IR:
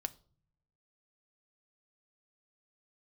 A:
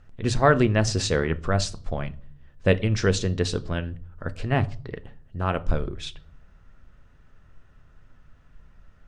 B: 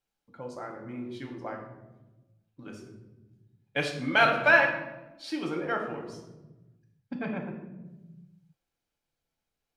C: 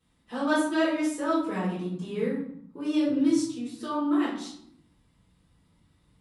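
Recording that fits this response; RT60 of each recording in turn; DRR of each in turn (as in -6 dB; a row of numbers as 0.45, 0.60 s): A; 0.50, 1.1, 0.70 s; 10.0, 0.5, -12.5 dB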